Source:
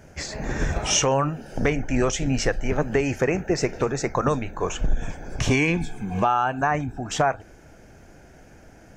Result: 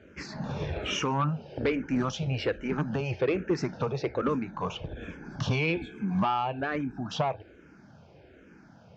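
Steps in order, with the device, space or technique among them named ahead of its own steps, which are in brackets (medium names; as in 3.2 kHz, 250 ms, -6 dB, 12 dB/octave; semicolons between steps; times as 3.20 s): barber-pole phaser into a guitar amplifier (barber-pole phaser -1.2 Hz; saturation -18 dBFS, distortion -16 dB; cabinet simulation 96–4400 Hz, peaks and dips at 180 Hz +3 dB, 720 Hz -6 dB, 1.9 kHz -6 dB)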